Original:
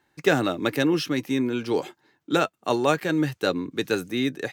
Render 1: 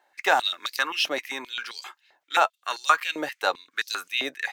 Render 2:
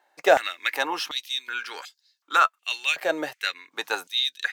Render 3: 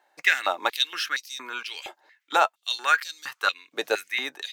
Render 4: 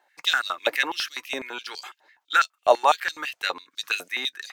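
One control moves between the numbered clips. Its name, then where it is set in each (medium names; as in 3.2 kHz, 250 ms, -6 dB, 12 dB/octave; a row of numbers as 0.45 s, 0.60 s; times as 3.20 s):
step-sequenced high-pass, rate: 7.6 Hz, 2.7 Hz, 4.3 Hz, 12 Hz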